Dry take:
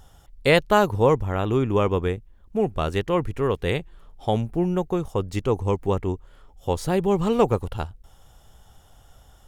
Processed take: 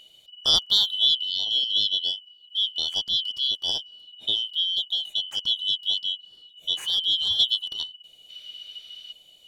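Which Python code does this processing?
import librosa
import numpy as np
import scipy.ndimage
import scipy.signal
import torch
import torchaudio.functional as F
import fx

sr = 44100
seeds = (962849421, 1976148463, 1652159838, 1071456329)

y = fx.band_shuffle(x, sr, order='3412')
y = fx.spec_box(y, sr, start_s=8.3, length_s=0.82, low_hz=1100.0, high_hz=6100.0, gain_db=11)
y = y * librosa.db_to_amplitude(-3.0)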